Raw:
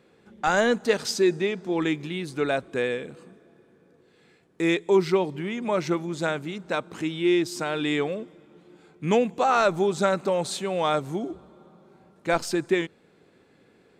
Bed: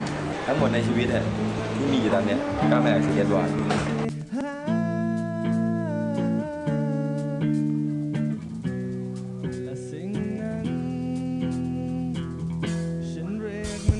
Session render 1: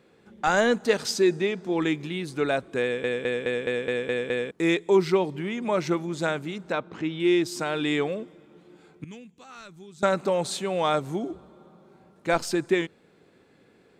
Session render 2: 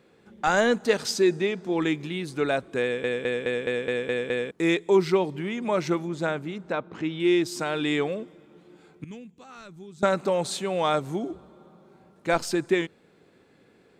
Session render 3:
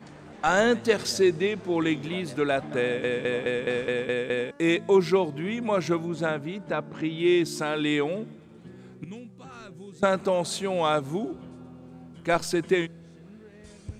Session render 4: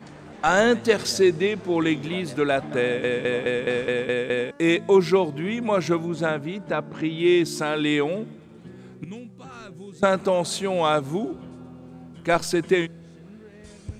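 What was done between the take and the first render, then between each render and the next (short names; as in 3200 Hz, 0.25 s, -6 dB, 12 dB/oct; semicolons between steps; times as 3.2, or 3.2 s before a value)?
2.83 stutter in place 0.21 s, 8 plays; 6.72–7.2 air absorption 150 m; 9.04–10.03 passive tone stack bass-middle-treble 6-0-2
6.08–6.95 high shelf 3000 Hz -7.5 dB; 9.1–10.05 tilt shelf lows +3 dB
add bed -18 dB
gain +3 dB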